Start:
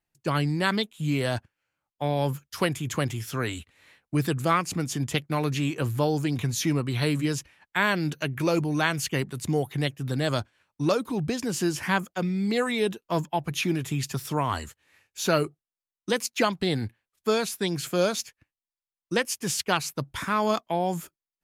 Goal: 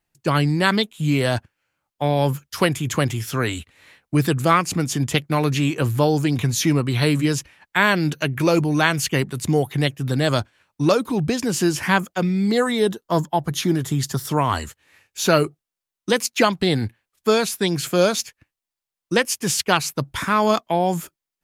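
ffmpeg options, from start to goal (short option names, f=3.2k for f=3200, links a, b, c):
-filter_complex "[0:a]asettb=1/sr,asplit=3[a][b][c];[a]atrim=end=12.514[d];[b]atrim=start=12.51:end=14.29,asetpts=PTS-STARTPTS,afade=t=in:d=0.004:c=qsin,afade=t=out:st=1.776:d=0.004:c=qsin,equalizer=f=2.5k:t=o:w=0.32:g=-14[e];[c]atrim=start=14.286[f];[d][e]acrossfade=d=0.004:c1=hsin:c2=qsin[g];[g][f]acrossfade=d=0.004:c1=qsin:c2=hsin,volume=6.5dB"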